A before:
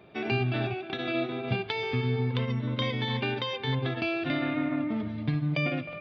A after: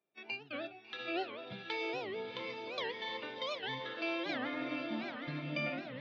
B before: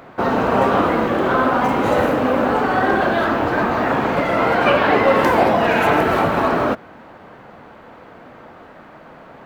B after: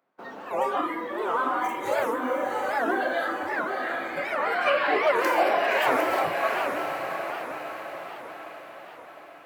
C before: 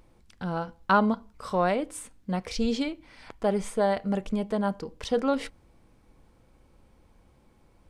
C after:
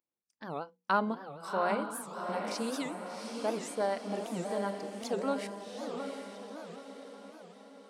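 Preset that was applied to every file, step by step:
treble shelf 5.6 kHz +5.5 dB; spectral noise reduction 16 dB; high-pass 220 Hz 12 dB/octave; gate -45 dBFS, range -11 dB; hum notches 60/120/180/240/300/360/420/480 Hz; on a send: echo that smears into a reverb 743 ms, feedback 52%, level -5 dB; on the sum: dynamic bell 3.4 kHz, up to -5 dB, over -49 dBFS, Q 5.6; warped record 78 rpm, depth 250 cents; trim -6.5 dB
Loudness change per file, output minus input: -9.5 LU, -9.0 LU, -7.0 LU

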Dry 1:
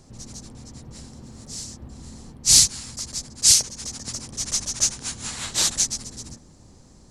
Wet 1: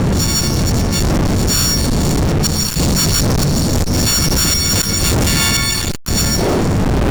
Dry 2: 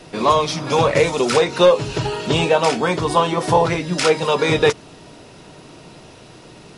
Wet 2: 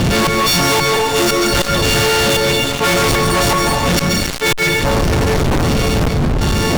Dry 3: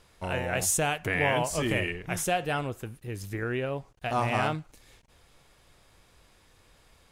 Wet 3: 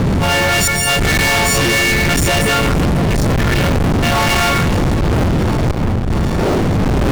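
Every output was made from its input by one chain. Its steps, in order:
partials quantised in pitch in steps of 4 st; wind noise 160 Hz -16 dBFS; treble shelf 9 kHz +3 dB; on a send: feedback echo behind a band-pass 664 ms, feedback 54%, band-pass 670 Hz, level -16 dB; on the sum: inverted gate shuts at -3 dBFS, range -41 dB; distance through air 110 m; plate-style reverb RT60 0.93 s, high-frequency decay 0.95×, pre-delay 120 ms, DRR 12 dB; fuzz box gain 35 dB, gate -41 dBFS; power-law waveshaper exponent 0.5; level flattener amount 50%; trim -2 dB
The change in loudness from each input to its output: +6.0 LU, +3.5 LU, +15.0 LU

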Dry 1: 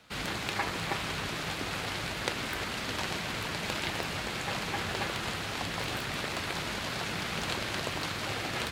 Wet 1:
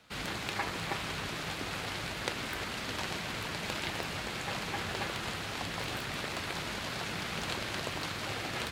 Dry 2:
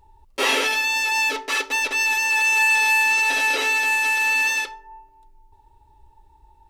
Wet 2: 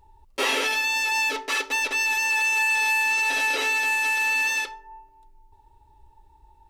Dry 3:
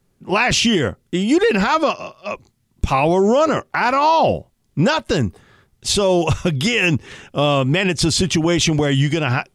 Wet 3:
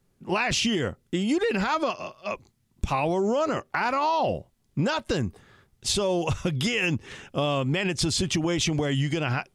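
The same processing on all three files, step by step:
compression 2.5:1, threshold -19 dBFS; peak normalisation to -12 dBFS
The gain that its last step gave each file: -2.5 dB, -1.5 dB, -4.5 dB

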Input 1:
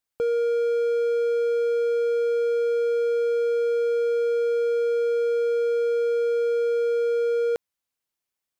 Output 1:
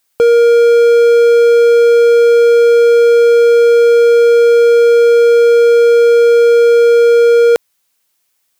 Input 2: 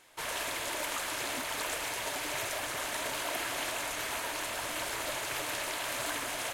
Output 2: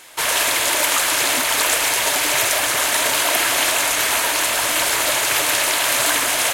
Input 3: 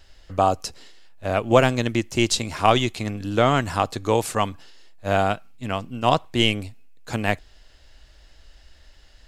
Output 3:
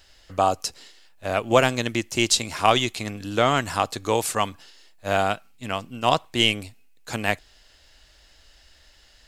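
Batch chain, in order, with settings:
tilt EQ +1.5 dB/octave; peak normalisation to -2 dBFS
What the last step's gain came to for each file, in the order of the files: +17.0 dB, +15.0 dB, -0.5 dB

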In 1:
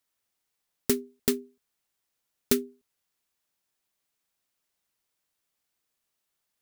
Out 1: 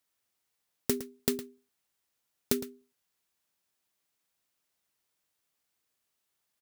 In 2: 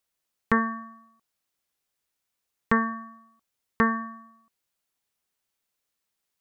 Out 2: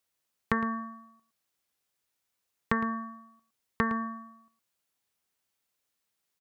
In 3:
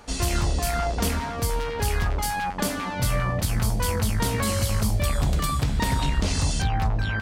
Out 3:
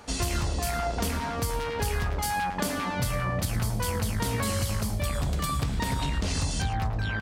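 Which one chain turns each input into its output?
high-pass 43 Hz; compression, threshold -24 dBFS; echo from a far wall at 19 m, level -13 dB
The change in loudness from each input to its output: -4.0 LU, -5.5 LU, -3.5 LU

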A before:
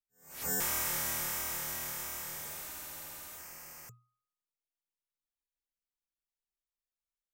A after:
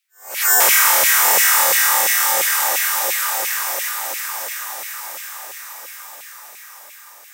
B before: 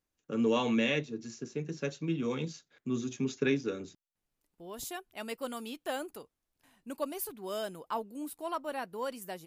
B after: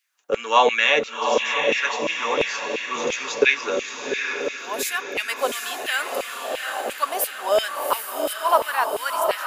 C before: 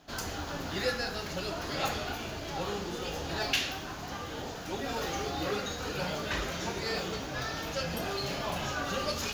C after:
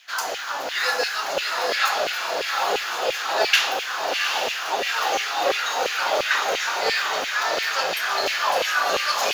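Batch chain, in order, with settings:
echo that smears into a reverb 769 ms, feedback 59%, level -4 dB; LFO high-pass saw down 2.9 Hz 490–2500 Hz; peak normalisation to -2 dBFS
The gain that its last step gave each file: +19.5 dB, +13.0 dB, +8.5 dB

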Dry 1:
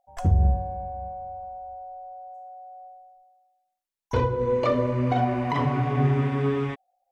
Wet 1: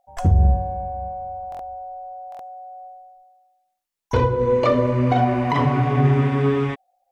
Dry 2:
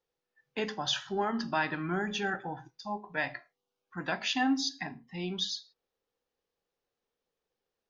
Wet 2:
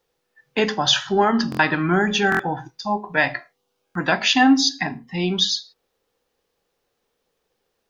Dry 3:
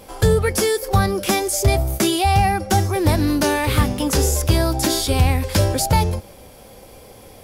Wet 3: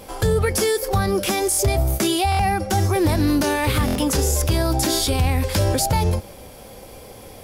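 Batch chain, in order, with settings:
loudness maximiser +12 dB; buffer glitch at 1.50/2.30/3.86 s, samples 1024, times 3; normalise loudness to -20 LUFS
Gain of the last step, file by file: -6.5 dB, +1.5 dB, -9.5 dB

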